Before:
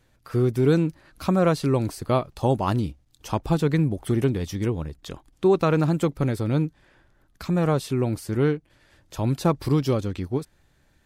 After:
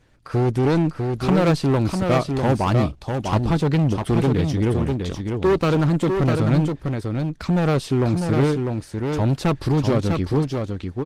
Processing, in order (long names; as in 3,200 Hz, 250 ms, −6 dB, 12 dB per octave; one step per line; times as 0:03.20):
low-pass filter 7,400 Hz 12 dB per octave
gain into a clipping stage and back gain 20.5 dB
single-tap delay 649 ms −5 dB
level +6 dB
Opus 20 kbit/s 48,000 Hz